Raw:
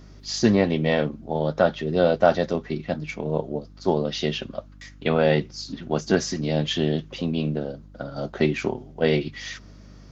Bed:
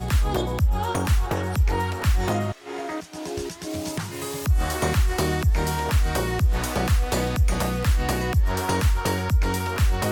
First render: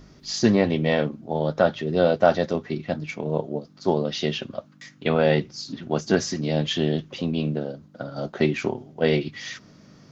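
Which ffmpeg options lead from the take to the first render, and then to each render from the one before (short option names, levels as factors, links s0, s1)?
-af "bandreject=f=50:t=h:w=4,bandreject=f=100:t=h:w=4"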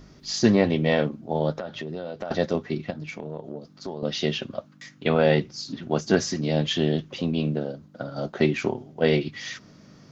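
-filter_complex "[0:a]asettb=1/sr,asplit=3[s0][s1][s2];[s0]atrim=end=1.564[s3];[s1]atrim=start=1.56:end=2.31,asetpts=PTS-STARTPTS,afade=t=in:d=0.004:c=qsin,afade=t=out:st=0.746:d=0.004:c=qsin,acompressor=threshold=0.0398:ratio=16:attack=3.2:release=140:knee=1:detection=peak[s4];[s2]atrim=start=2.306[s5];[s3][s4]acrossfade=d=0.004:c1=hsin:c2=qsin[s6];[s6][s5]acrossfade=d=0.004:c1=qsin:c2=hsin,asettb=1/sr,asplit=3[s7][s8][s9];[s7]atrim=end=2.904[s10];[s8]atrim=start=2.9:end=4.03,asetpts=PTS-STARTPTS,afade=t=in:d=0.004:c=qsin,afade=t=out:st=1.126:d=0.004:c=qsin,acompressor=threshold=0.0282:ratio=4:attack=3.2:release=140:knee=1:detection=peak[s11];[s9]atrim=start=4.026[s12];[s10][s11]acrossfade=d=0.004:c1=hsin:c2=qsin[s13];[s13][s12]acrossfade=d=0.004:c1=qsin:c2=hsin"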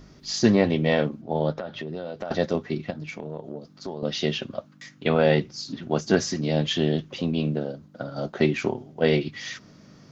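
-filter_complex "[0:a]asettb=1/sr,asplit=3[s0][s1][s2];[s0]atrim=end=1.224[s3];[s1]atrim=start=1.22:end=1.95,asetpts=PTS-STARTPTS,afade=t=in:d=0.004:c=qsin,afade=t=out:st=0.726:d=0.004:c=qsin,lowpass=5200[s4];[s2]atrim=start=1.946[s5];[s3][s4]acrossfade=d=0.004:c1=hsin:c2=qsin[s6];[s6][s5]acrossfade=d=0.004:c1=qsin:c2=hsin"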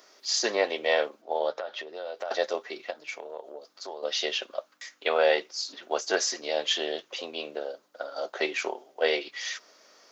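-af "highpass=f=480:w=0.5412,highpass=f=480:w=1.3066,highshelf=f=6900:g=8"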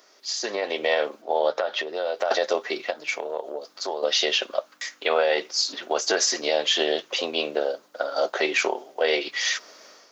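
-af "alimiter=limit=0.0944:level=0:latency=1:release=113,dynaudnorm=f=470:g=3:m=2.99"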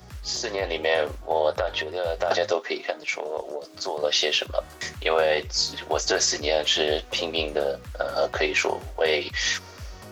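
-filter_complex "[1:a]volume=0.112[s0];[0:a][s0]amix=inputs=2:normalize=0"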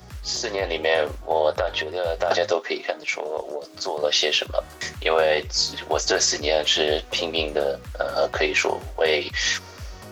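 -af "volume=1.26"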